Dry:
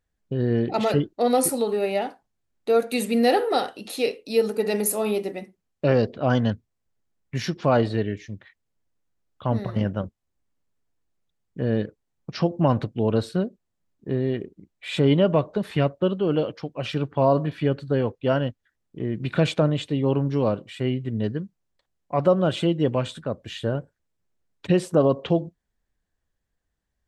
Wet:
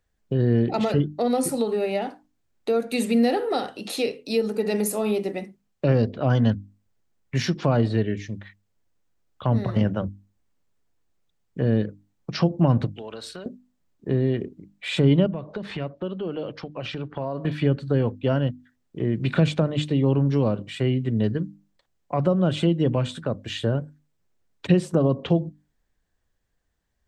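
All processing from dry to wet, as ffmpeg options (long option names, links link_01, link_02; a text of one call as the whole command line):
ffmpeg -i in.wav -filter_complex "[0:a]asettb=1/sr,asplit=3[link_01][link_02][link_03];[link_01]atrim=end=12.934[link_04];[link_02]atrim=start=12.93:end=13.46,asetpts=PTS-STARTPTS,afade=type=in:duration=0.004:curve=qsin,afade=type=out:start_time=0.526:duration=0.004:curve=qsin,highpass=frequency=1400:poles=1,acompressor=threshold=-36dB:ratio=12:attack=3.2:release=140:knee=1:detection=peak,aeval=exprs='val(0)+0.000316*(sin(2*PI*60*n/s)+sin(2*PI*2*60*n/s)/2+sin(2*PI*3*60*n/s)/3+sin(2*PI*4*60*n/s)/4+sin(2*PI*5*60*n/s)/5)':channel_layout=same[link_05];[link_03]atrim=start=13.456[link_06];[link_04][link_05]acrossfade=duration=0.004:curve1=hsin:curve2=qsin[link_07];[link_07][link_06]acrossfade=duration=0.004:curve1=qsin:curve2=hsin,asettb=1/sr,asplit=3[link_08][link_09][link_10];[link_08]atrim=end=15.264[link_11];[link_09]atrim=start=15.26:end=17.45,asetpts=PTS-STARTPTS,afade=type=in:duration=0.004:curve=qsin,afade=type=out:start_time=2.186:duration=0.004:curve=qsin,acompressor=threshold=-35dB:ratio=2.5:attack=3.2:release=140:knee=1:detection=peak,lowpass=5200[link_12];[link_10]atrim=start=17.446[link_13];[link_11][link_12]acrossfade=duration=0.004:curve1=hsin:curve2=qsin[link_14];[link_14][link_13]acrossfade=duration=0.004:curve1=qsin:curve2=hsin,equalizer=frequency=11000:width_type=o:width=0.2:gain=-7.5,bandreject=frequency=50:width_type=h:width=6,bandreject=frequency=100:width_type=h:width=6,bandreject=frequency=150:width_type=h:width=6,bandreject=frequency=200:width_type=h:width=6,bandreject=frequency=250:width_type=h:width=6,bandreject=frequency=300:width_type=h:width=6,acrossover=split=260[link_15][link_16];[link_16]acompressor=threshold=-31dB:ratio=2.5[link_17];[link_15][link_17]amix=inputs=2:normalize=0,volume=4.5dB" out.wav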